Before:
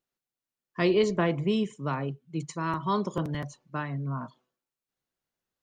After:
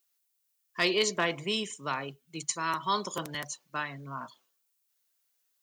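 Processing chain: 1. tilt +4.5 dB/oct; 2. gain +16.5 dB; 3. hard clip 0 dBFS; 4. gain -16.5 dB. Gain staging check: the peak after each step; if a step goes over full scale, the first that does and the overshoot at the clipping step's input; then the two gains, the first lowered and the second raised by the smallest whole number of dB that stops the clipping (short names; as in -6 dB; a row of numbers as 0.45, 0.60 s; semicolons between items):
-12.5, +4.0, 0.0, -16.5 dBFS; step 2, 4.0 dB; step 2 +12.5 dB, step 4 -12.5 dB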